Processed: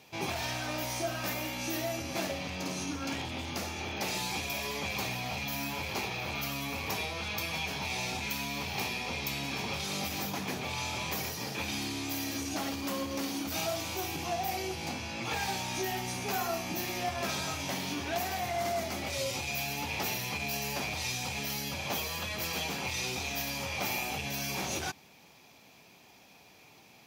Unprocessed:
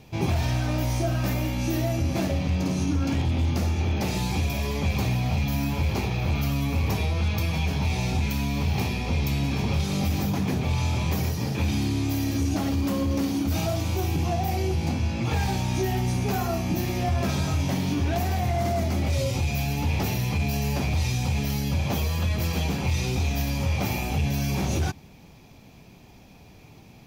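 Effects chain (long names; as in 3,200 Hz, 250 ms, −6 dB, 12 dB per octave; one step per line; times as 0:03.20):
high-pass filter 890 Hz 6 dB per octave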